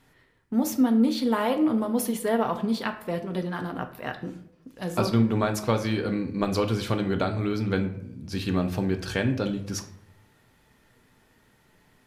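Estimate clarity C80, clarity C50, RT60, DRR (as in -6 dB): 14.5 dB, 11.5 dB, 0.80 s, 5.5 dB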